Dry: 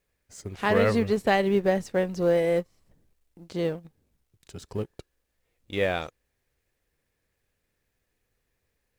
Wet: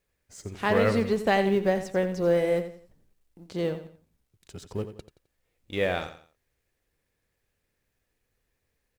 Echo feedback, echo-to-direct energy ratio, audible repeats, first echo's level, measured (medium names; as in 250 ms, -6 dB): 32%, -10.5 dB, 3, -11.0 dB